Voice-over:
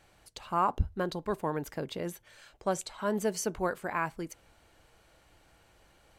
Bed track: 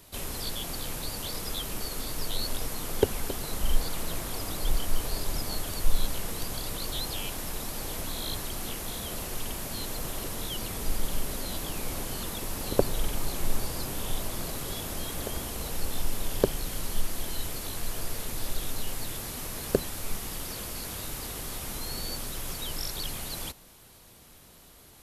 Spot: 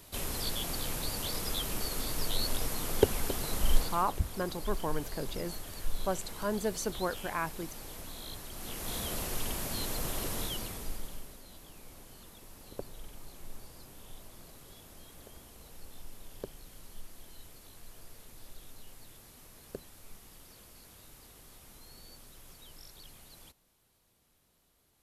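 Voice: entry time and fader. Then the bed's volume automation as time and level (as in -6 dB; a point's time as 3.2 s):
3.40 s, -2.5 dB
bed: 3.77 s -0.5 dB
4.12 s -10 dB
8.49 s -10 dB
8.95 s -0.5 dB
10.41 s -0.5 dB
11.41 s -18 dB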